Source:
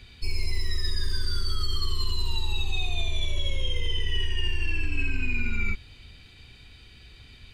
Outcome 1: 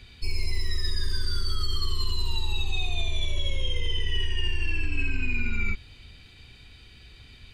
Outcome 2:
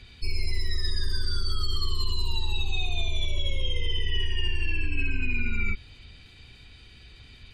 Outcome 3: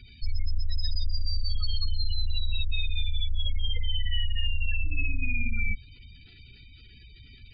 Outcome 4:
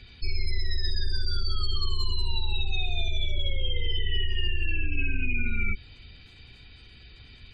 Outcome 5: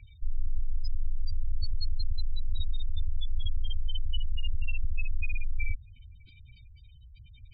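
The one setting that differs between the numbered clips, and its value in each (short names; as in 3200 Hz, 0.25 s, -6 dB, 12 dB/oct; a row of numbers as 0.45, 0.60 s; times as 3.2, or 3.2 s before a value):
spectral gate, under each frame's peak: -60, -45, -20, -35, -10 dB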